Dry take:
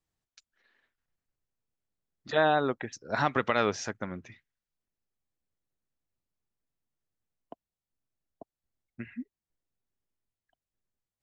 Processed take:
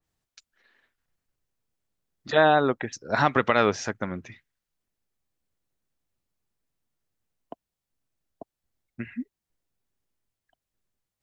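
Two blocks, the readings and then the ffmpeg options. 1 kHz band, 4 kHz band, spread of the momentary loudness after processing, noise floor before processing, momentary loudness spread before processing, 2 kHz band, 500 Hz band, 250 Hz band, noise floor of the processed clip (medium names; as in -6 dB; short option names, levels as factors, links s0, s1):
+5.5 dB, +4.5 dB, 19 LU, under -85 dBFS, 19 LU, +5.5 dB, +5.5 dB, +5.5 dB, under -85 dBFS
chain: -af "adynamicequalizer=threshold=0.01:dfrequency=3000:dqfactor=0.7:tfrequency=3000:tqfactor=0.7:attack=5:release=100:ratio=0.375:range=2:mode=cutabove:tftype=highshelf,volume=1.88"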